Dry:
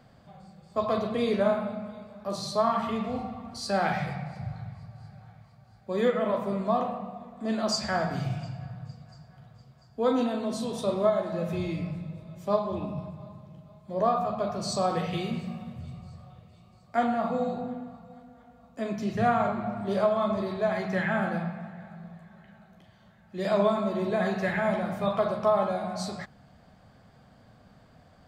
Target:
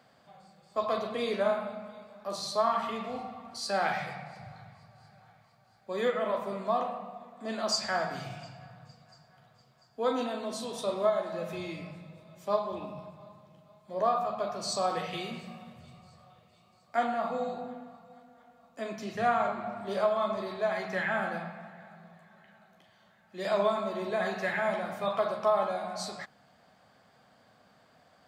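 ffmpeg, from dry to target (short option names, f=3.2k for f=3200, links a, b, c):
-af "highpass=f=590:p=1"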